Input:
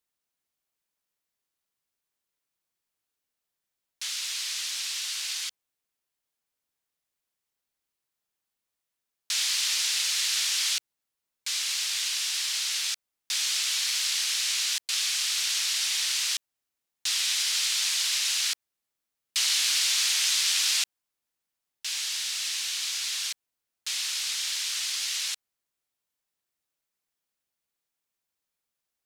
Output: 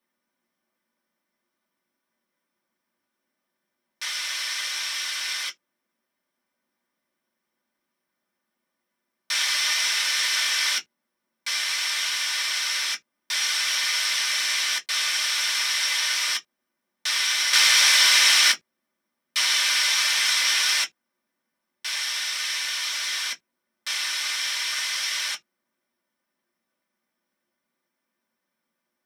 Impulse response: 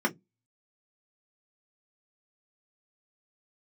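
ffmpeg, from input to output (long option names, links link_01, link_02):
-filter_complex "[1:a]atrim=start_sample=2205,atrim=end_sample=3528[link_01];[0:a][link_01]afir=irnorm=-1:irlink=0,asettb=1/sr,asplit=3[link_02][link_03][link_04];[link_02]atrim=end=17.534[link_05];[link_03]atrim=start=17.53:end=18.52,asetpts=PTS-STARTPTS,afade=type=in:duration=0.004:curve=qsin,afade=type=out:start_time=0.986:duration=0.004:curve=qsin,acontrast=87[link_06];[link_04]atrim=start=18.516[link_07];[link_05][link_06]acrossfade=duration=0.004:curve1=hsin:curve2=qsin[link_08];[link_08][link_07]acrossfade=duration=0.004:curve1=qsin:curve2=hsin"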